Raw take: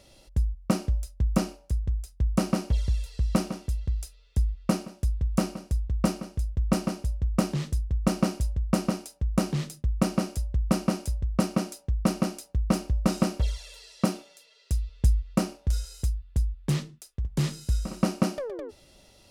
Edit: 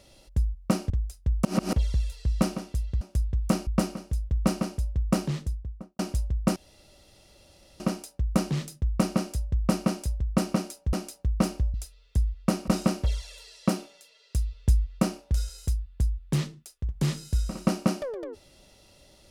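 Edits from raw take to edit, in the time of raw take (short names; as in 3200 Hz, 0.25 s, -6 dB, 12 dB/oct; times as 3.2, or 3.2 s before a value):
0.9–1.84 cut
2.39–2.67 reverse
3.95–4.89 move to 13.04
5.55–5.93 cut
7.48–8.25 studio fade out
8.82 insert room tone 1.24 s
11.95–12.23 cut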